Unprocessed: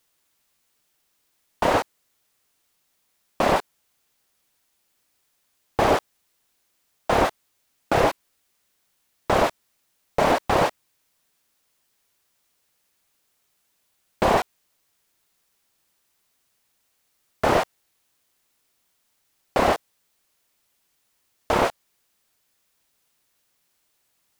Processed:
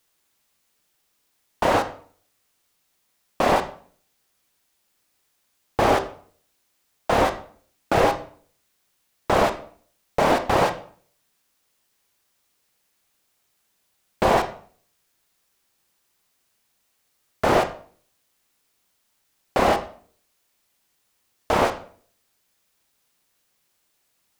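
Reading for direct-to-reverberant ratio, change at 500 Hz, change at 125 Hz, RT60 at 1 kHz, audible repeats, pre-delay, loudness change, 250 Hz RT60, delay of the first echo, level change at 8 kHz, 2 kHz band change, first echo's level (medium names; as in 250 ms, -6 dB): 7.5 dB, +1.0 dB, +0.5 dB, 0.50 s, no echo, 18 ms, +0.5 dB, 0.60 s, no echo, +0.5 dB, +0.5 dB, no echo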